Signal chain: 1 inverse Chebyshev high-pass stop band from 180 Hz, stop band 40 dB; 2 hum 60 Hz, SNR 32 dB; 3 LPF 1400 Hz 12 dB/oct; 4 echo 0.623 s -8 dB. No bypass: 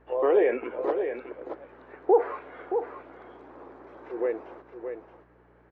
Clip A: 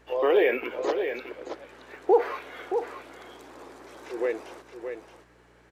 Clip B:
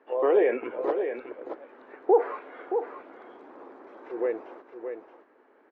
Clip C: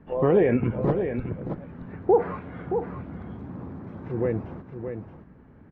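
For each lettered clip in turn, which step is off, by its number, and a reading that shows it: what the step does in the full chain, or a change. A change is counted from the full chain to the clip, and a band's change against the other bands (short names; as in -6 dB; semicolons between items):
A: 3, 2 kHz band +6.5 dB; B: 2, momentary loudness spread change -1 LU; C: 1, 250 Hz band +8.0 dB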